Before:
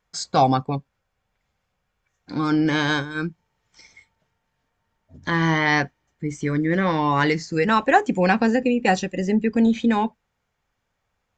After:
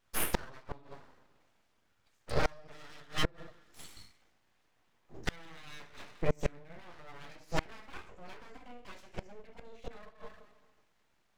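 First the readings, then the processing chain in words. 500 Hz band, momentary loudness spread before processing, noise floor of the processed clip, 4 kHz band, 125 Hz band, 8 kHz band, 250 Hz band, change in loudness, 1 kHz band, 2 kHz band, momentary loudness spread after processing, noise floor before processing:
−17.0 dB, 12 LU, −73 dBFS, −12.5 dB, −17.0 dB, −7.5 dB, −25.5 dB, −18.5 dB, −22.0 dB, −19.5 dB, 19 LU, −76 dBFS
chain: coupled-rooms reverb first 0.45 s, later 1.6 s, from −28 dB, DRR −1.5 dB
gate with flip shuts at −13 dBFS, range −30 dB
full-wave rectification
level −1.5 dB

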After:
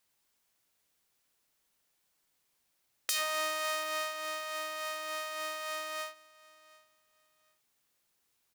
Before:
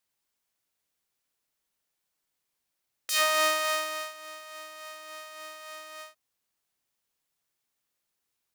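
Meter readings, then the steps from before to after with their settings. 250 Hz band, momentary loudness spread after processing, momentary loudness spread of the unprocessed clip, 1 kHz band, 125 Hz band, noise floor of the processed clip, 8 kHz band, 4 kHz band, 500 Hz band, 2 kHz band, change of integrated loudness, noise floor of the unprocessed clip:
−4.5 dB, 7 LU, 19 LU, −4.5 dB, can't be measured, −77 dBFS, −4.5 dB, −5.0 dB, −4.0 dB, −4.5 dB, −8.5 dB, −82 dBFS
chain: downward compressor 8 to 1, threshold −33 dBFS, peak gain reduction 14.5 dB
on a send: repeating echo 736 ms, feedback 27%, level −23 dB
on the sum: level +5 dB

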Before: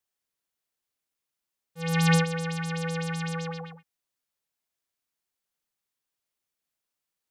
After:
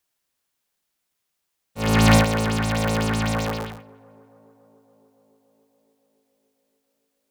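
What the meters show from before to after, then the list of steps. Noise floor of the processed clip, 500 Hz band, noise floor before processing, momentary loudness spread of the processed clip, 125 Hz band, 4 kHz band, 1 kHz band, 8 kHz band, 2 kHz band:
−78 dBFS, +8.5 dB, below −85 dBFS, 12 LU, +5.5 dB, +7.5 dB, +9.5 dB, +7.5 dB, +6.0 dB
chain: sub-harmonics by changed cycles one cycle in 3, inverted
in parallel at −4.5 dB: soft clipping −26 dBFS, distortion −9 dB
on the sum: tape delay 283 ms, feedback 85%, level −22.5 dB, low-pass 1,300 Hz
level +4.5 dB

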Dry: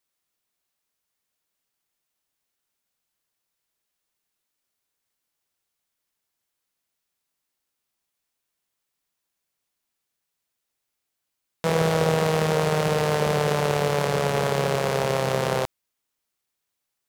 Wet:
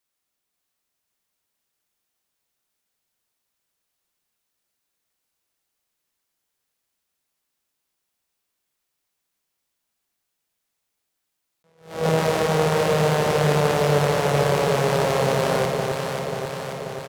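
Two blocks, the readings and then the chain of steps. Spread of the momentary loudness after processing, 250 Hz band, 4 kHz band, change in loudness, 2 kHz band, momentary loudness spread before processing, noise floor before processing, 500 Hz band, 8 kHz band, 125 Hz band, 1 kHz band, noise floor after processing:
9 LU, +2.5 dB, +2.0 dB, +2.0 dB, +2.0 dB, 4 LU, −81 dBFS, +3.0 dB, +2.0 dB, +2.5 dB, +2.5 dB, −79 dBFS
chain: double-tracking delay 41 ms −11 dB
delay that swaps between a low-pass and a high-pass 268 ms, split 880 Hz, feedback 81%, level −2.5 dB
level that may rise only so fast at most 140 dB per second

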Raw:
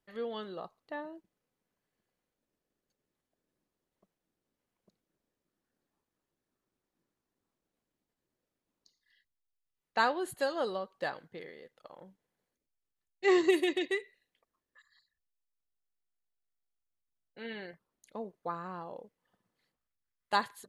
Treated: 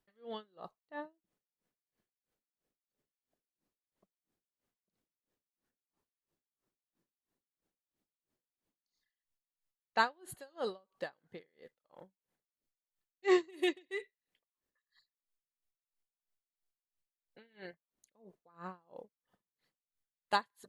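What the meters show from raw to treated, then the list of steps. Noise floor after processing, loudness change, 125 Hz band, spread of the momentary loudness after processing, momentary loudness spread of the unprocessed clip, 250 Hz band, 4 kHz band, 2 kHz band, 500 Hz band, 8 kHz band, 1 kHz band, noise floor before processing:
below −85 dBFS, −3.5 dB, −6.0 dB, 23 LU, 20 LU, −5.0 dB, −3.5 dB, −4.0 dB, −5.5 dB, −4.5 dB, −3.5 dB, below −85 dBFS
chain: loose part that buzzes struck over −39 dBFS, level −37 dBFS
tremolo with a sine in dB 3 Hz, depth 31 dB

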